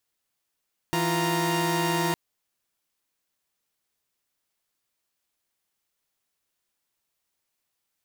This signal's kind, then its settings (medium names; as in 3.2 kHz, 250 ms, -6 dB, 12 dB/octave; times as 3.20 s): chord E3/F4/A#5 saw, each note -25 dBFS 1.21 s